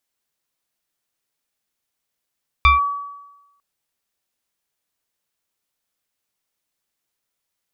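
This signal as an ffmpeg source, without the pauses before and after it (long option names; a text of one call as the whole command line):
ffmpeg -f lavfi -i "aevalsrc='0.447*pow(10,-3*t/1.04)*sin(2*PI*1140*t+1.4*clip(1-t/0.15,0,1)*sin(2*PI*1.06*1140*t))':duration=0.95:sample_rate=44100" out.wav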